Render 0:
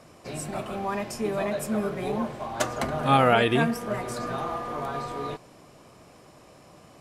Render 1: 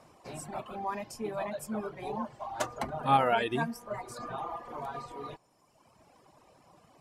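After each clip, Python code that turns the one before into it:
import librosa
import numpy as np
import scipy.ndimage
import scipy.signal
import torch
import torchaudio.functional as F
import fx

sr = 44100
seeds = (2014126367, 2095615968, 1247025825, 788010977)

y = fx.dereverb_blind(x, sr, rt60_s=1.5)
y = fx.peak_eq(y, sr, hz=890.0, db=8.0, octaves=0.59)
y = F.gain(torch.from_numpy(y), -7.5).numpy()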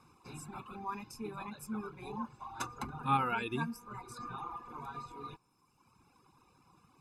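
y = x + 1.0 * np.pad(x, (int(0.8 * sr / 1000.0), 0))[:len(x)]
y = F.gain(torch.from_numpy(y), -7.5).numpy()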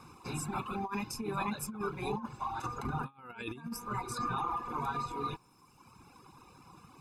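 y = fx.over_compress(x, sr, threshold_db=-42.0, ratio=-0.5)
y = F.gain(torch.from_numpy(y), 6.0).numpy()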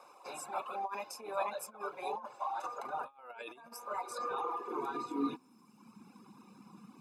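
y = fx.filter_sweep_highpass(x, sr, from_hz=600.0, to_hz=210.0, start_s=4.04, end_s=5.65, q=7.9)
y = F.gain(torch.from_numpy(y), -5.0).numpy()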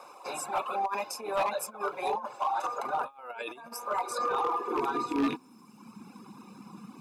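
y = fx.rattle_buzz(x, sr, strikes_db=-44.0, level_db=-33.0)
y = np.clip(y, -10.0 ** (-30.5 / 20.0), 10.0 ** (-30.5 / 20.0))
y = F.gain(torch.from_numpy(y), 8.0).numpy()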